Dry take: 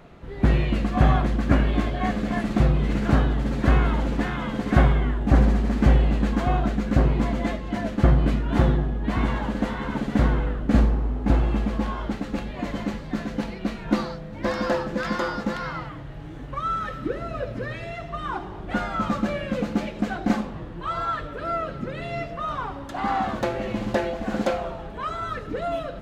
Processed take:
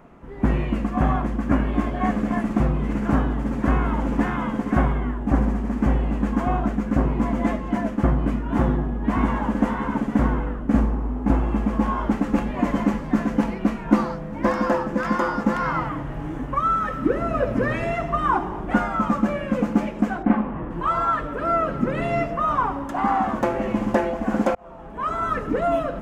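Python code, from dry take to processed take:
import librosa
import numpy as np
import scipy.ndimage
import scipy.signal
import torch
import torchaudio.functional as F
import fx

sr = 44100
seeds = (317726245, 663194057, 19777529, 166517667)

y = fx.lowpass(x, sr, hz=2900.0, slope=24, at=(20.22, 20.69), fade=0.02)
y = fx.edit(y, sr, fx.fade_in_span(start_s=24.55, length_s=0.56), tone=tone)
y = fx.graphic_eq_15(y, sr, hz=(100, 250, 1000, 4000), db=(-5, 6, 6, -12))
y = fx.rider(y, sr, range_db=10, speed_s=0.5)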